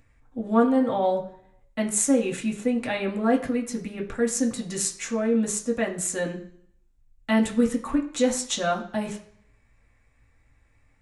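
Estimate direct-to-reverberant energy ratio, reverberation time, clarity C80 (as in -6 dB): -1.0 dB, 0.60 s, 14.5 dB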